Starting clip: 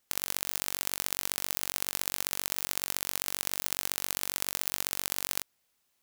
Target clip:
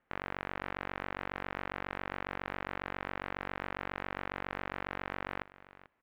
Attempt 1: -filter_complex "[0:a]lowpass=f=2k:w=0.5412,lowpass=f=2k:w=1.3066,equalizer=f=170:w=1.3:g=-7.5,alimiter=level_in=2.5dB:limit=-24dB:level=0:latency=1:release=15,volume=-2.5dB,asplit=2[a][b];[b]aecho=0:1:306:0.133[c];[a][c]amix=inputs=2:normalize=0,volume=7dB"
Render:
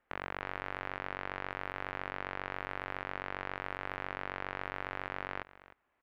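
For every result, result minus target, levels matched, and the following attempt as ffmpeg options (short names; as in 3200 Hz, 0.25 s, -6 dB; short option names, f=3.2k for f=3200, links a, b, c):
echo 0.134 s early; 125 Hz band -2.5 dB
-filter_complex "[0:a]lowpass=f=2k:w=0.5412,lowpass=f=2k:w=1.3066,equalizer=f=170:w=1.3:g=-7.5,alimiter=level_in=2.5dB:limit=-24dB:level=0:latency=1:release=15,volume=-2.5dB,asplit=2[a][b];[b]aecho=0:1:440:0.133[c];[a][c]amix=inputs=2:normalize=0,volume=7dB"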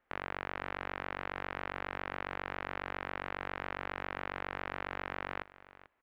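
125 Hz band -3.5 dB
-filter_complex "[0:a]lowpass=f=2k:w=0.5412,lowpass=f=2k:w=1.3066,alimiter=level_in=2.5dB:limit=-24dB:level=0:latency=1:release=15,volume=-2.5dB,asplit=2[a][b];[b]aecho=0:1:440:0.133[c];[a][c]amix=inputs=2:normalize=0,volume=7dB"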